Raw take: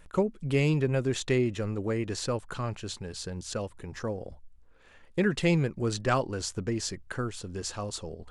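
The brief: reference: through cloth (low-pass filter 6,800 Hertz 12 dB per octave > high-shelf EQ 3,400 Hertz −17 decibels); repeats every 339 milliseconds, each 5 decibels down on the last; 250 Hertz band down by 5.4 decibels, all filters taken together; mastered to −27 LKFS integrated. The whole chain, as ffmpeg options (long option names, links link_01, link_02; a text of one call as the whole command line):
ffmpeg -i in.wav -af "lowpass=6800,equalizer=frequency=250:width_type=o:gain=-8.5,highshelf=frequency=3400:gain=-17,aecho=1:1:339|678|1017|1356|1695|2034|2373:0.562|0.315|0.176|0.0988|0.0553|0.031|0.0173,volume=5.5dB" out.wav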